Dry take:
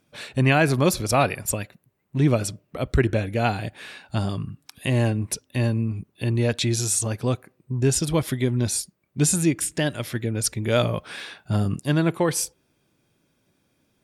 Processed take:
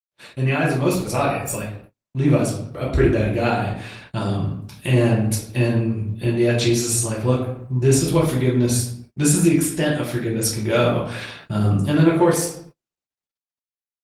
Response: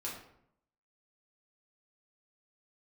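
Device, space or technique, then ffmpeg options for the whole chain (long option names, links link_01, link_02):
speakerphone in a meeting room: -filter_complex "[0:a]asettb=1/sr,asplit=3[link_01][link_02][link_03];[link_01]atrim=end=8.684[link_04];[link_02]atrim=start=8.68:end=9.43,asetpts=PTS-STARTPTS,afade=type=in:duration=0.004:curve=qsin,afade=type=out:start_time=0.746:duration=0.004:curve=qsin,equalizer=frequency=1600:width=4.1:gain=5.5[link_05];[link_03]atrim=start=9.426[link_06];[link_04][link_05]acrossfade=duration=0.004:curve1=hsin:curve2=qsin[link_07];[link_07][link_06]acrossfade=duration=0.004:curve1=qsin:curve2=hsin[link_08];[1:a]atrim=start_sample=2205[link_09];[link_08][link_09]afir=irnorm=-1:irlink=0,dynaudnorm=framelen=300:gausssize=9:maxgain=8dB,agate=range=-38dB:threshold=-39dB:ratio=16:detection=peak,volume=-2dB" -ar 48000 -c:a libopus -b:a 20k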